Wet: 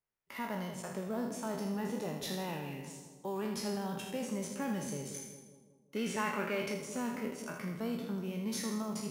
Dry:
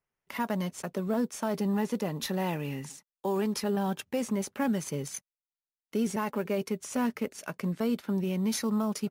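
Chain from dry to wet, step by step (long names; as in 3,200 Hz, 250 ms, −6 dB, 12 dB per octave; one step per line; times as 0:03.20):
peak hold with a decay on every bin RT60 0.69 s
0:05.96–0:06.74: parametric band 2,100 Hz +10.5 dB 2.2 octaves
echo with a time of its own for lows and highs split 850 Hz, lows 185 ms, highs 80 ms, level −9 dB
level −9 dB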